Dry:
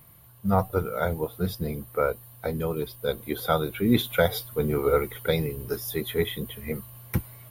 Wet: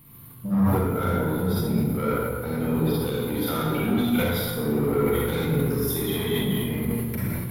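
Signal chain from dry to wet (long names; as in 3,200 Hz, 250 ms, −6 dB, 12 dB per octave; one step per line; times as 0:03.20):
graphic EQ with 15 bands 250 Hz +9 dB, 630 Hz −11 dB, 1,600 Hz −4 dB, 6,300 Hz −6 dB
downward compressor 4 to 1, threshold −26 dBFS, peak gain reduction 14 dB
soft clipping −26 dBFS, distortion −13 dB
convolution reverb RT60 1.9 s, pre-delay 33 ms, DRR −7.5 dB
level that may fall only so fast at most 25 dB per second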